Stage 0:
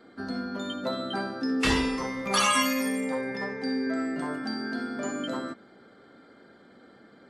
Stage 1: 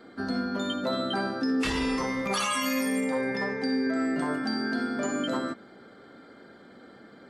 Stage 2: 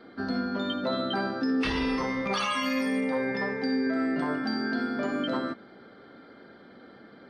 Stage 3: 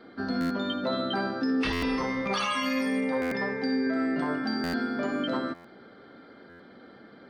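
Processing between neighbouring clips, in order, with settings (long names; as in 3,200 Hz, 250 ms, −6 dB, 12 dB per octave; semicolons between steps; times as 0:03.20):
brickwall limiter −23 dBFS, peak gain reduction 11 dB; level +3.5 dB
Savitzky-Golay smoothing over 15 samples
buffer that repeats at 0:00.40/0:01.72/0:03.21/0:04.63/0:05.54/0:06.49, samples 512, times 8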